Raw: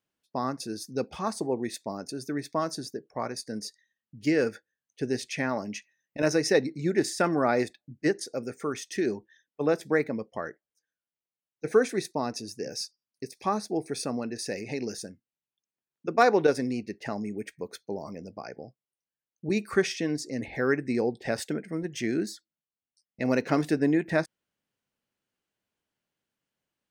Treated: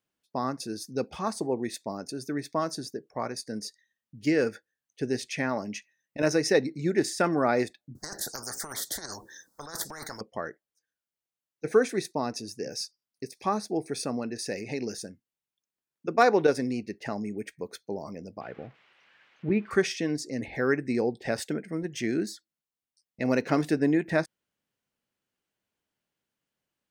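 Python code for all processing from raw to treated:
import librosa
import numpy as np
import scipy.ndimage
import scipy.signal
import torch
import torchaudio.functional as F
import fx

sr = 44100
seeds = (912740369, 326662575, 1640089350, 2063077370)

y = fx.chain(x, sr, fx.cheby1_bandstop(low_hz=1200.0, high_hz=5400.0, order=2),
    fx.over_compress(threshold_db=-32.0, ratio=-1.0),
    fx.spectral_comp(ratio=10.0), at=(7.95, 10.21))
y = fx.chain(y, sr, fx.crossing_spikes(level_db=-30.5),
    fx.lowpass(hz=2400.0, slope=24),
    fx.low_shelf(hz=140.0, db=7.0), at=(18.41, 19.71))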